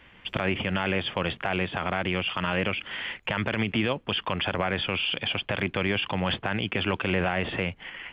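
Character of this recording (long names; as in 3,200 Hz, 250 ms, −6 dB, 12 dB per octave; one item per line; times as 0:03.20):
background noise floor −54 dBFS
spectral slope −3.0 dB per octave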